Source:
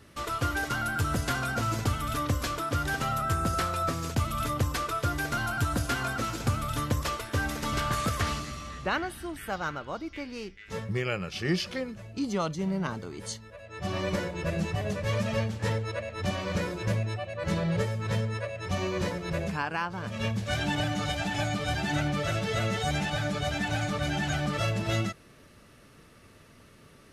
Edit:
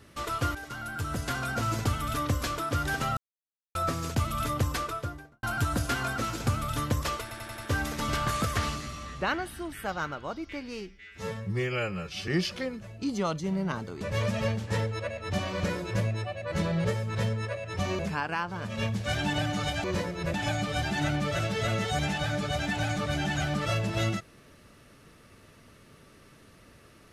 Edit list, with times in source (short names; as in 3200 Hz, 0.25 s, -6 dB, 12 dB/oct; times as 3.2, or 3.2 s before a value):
0.55–1.69 fade in, from -12 dB
3.17–3.75 mute
4.72–5.43 studio fade out
7.22 stutter 0.09 s, 5 plays
10.45–11.43 stretch 1.5×
13.16–14.93 cut
18.91–19.41 move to 21.26